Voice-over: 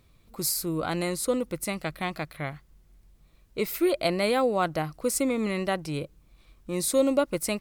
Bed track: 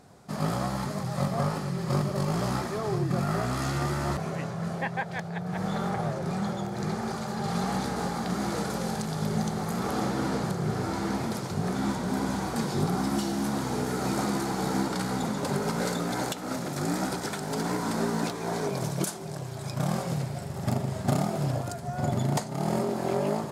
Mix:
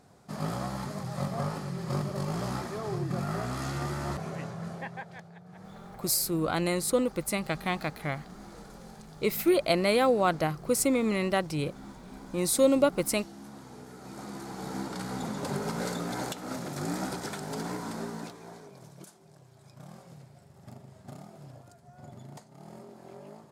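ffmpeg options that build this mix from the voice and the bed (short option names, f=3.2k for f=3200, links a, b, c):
-filter_complex "[0:a]adelay=5650,volume=0.5dB[a];[1:a]volume=9dB,afade=t=out:st=4.45:d=0.94:silence=0.223872,afade=t=in:st=14.03:d=1.43:silence=0.211349,afade=t=out:st=17.41:d=1.24:silence=0.158489[b];[a][b]amix=inputs=2:normalize=0"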